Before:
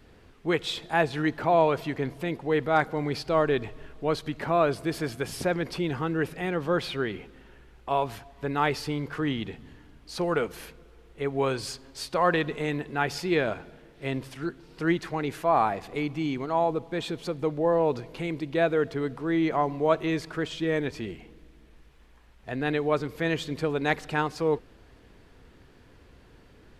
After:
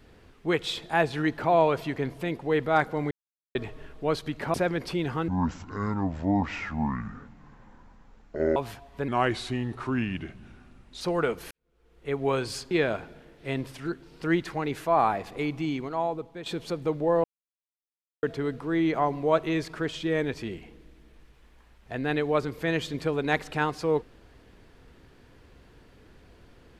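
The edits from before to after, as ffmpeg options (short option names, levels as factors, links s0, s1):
-filter_complex "[0:a]asplit=13[s0][s1][s2][s3][s4][s5][s6][s7][s8][s9][s10][s11][s12];[s0]atrim=end=3.11,asetpts=PTS-STARTPTS,afade=t=out:st=3.106:d=0.004:c=hsin[s13];[s1]atrim=start=3.11:end=3.55,asetpts=PTS-STARTPTS,volume=0[s14];[s2]atrim=start=3.55:end=4.542,asetpts=PTS-STARTPTS,afade=t=in:d=0.004:c=hsin[s15];[s3]atrim=start=5.388:end=6.134[s16];[s4]atrim=start=6.13:end=8,asetpts=PTS-STARTPTS,asetrate=25137,aresample=44100[s17];[s5]atrim=start=7.996:end=8.524[s18];[s6]atrim=start=8.52:end=10.14,asetpts=PTS-STARTPTS,asetrate=37044,aresample=44100[s19];[s7]atrim=start=10.136:end=10.64,asetpts=PTS-STARTPTS,afade=t=out:st=0.5:d=0.004:c=hsin[s20];[s8]atrim=start=10.64:end=11.842,asetpts=PTS-STARTPTS,afade=t=in:d=0.6:c=qua[s21];[s9]atrim=start=13.278:end=17.03,asetpts=PTS-STARTPTS,afade=t=out:st=2.902:d=0.85:silence=0.298538[s22];[s10]atrim=start=17.03:end=17.81,asetpts=PTS-STARTPTS,afade=t=in:d=0.004:c=hsin:silence=0.298538,afade=t=out:st=0.776:d=0.004:c=hsin[s23];[s11]atrim=start=17.81:end=18.8,asetpts=PTS-STARTPTS,volume=0[s24];[s12]atrim=start=18.8,asetpts=PTS-STARTPTS,afade=t=in:d=0.004:c=hsin[s25];[s13][s14][s15]concat=n=3:v=0:a=1[s26];[s26][s16]acrossfade=d=0.004:c1=hsin:c2=hsin[s27];[s27][s17]acrossfade=d=0.004:c1=hsin:c2=hsin[s28];[s28][s18]acrossfade=d=0.004:c1=hsin:c2=hsin[s29];[s29][s19]acrossfade=d=0.004:c1=hsin:c2=hsin[s30];[s20][s21]concat=n=2:v=0:a=1[s31];[s30][s31]acrossfade=d=0.004:c1=hsin:c2=hsin[s32];[s22][s23][s24][s25]concat=n=4:v=0:a=1[s33];[s32][s33]acrossfade=d=0.004:c1=hsin:c2=hsin"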